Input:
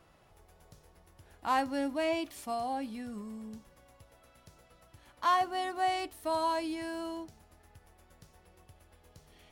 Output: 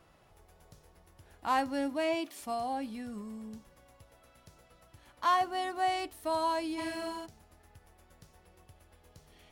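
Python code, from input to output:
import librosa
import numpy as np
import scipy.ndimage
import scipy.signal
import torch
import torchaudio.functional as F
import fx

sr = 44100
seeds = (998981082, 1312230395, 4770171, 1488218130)

y = fx.highpass(x, sr, hz=fx.line((1.89, 60.0), (2.4, 210.0)), slope=24, at=(1.89, 2.4), fade=0.02)
y = fx.room_flutter(y, sr, wall_m=7.5, rt60_s=1.1, at=(6.77, 7.25), fade=0.02)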